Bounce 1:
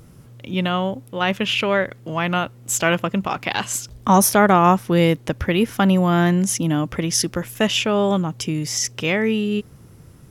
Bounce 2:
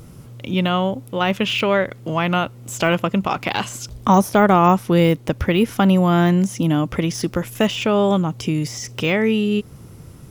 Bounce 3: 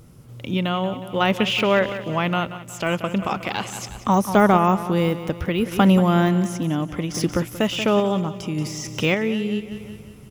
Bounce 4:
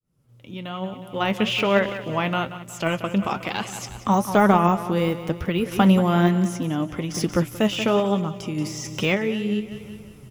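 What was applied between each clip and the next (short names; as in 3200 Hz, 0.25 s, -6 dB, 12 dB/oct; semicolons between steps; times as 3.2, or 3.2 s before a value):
de-esser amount 65%; bell 1700 Hz -4 dB 0.31 oct; in parallel at -2 dB: compressor, threshold -26 dBFS, peak gain reduction 15.5 dB
feedback echo 0.182 s, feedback 55%, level -12.5 dB; random-step tremolo
opening faded in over 1.68 s; flange 1.1 Hz, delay 4.3 ms, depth 5.9 ms, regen +63%; gain +3 dB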